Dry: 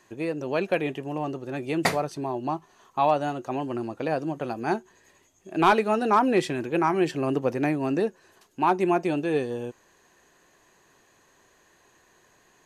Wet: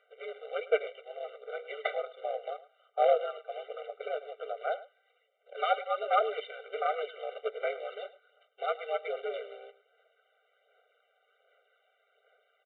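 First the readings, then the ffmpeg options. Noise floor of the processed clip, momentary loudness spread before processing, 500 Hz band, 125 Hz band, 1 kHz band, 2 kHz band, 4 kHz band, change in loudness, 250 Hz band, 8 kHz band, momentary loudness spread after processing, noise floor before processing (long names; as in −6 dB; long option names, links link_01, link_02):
−73 dBFS, 11 LU, −5.5 dB, below −40 dB, −8.0 dB, −8.0 dB, −6.0 dB, −8.0 dB, below −35 dB, below −35 dB, 14 LU, −62 dBFS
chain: -filter_complex "[0:a]lowshelf=frequency=64:gain=-6,acrossover=split=100|2300[link_01][link_02][link_03];[link_02]acrusher=bits=3:mode=log:mix=0:aa=0.000001[link_04];[link_01][link_04][link_03]amix=inputs=3:normalize=0,afreqshift=-79,aphaser=in_gain=1:out_gain=1:delay=1.2:decay=0.36:speed=1.3:type=sinusoidal,tremolo=f=190:d=0.667,aresample=8000,aeval=exprs='clip(val(0),-1,0.211)':channel_layout=same,aresample=44100,aecho=1:1:106:0.133,afftfilt=real='re*eq(mod(floor(b*sr/1024/390),2),1)':imag='im*eq(mod(floor(b*sr/1024/390),2),1)':win_size=1024:overlap=0.75,volume=-1.5dB"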